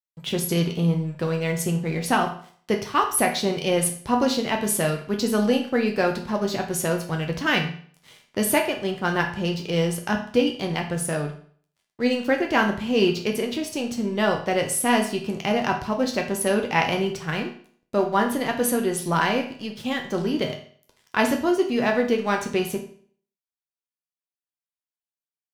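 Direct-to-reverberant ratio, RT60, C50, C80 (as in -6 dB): 1.5 dB, 0.50 s, 8.5 dB, 12.5 dB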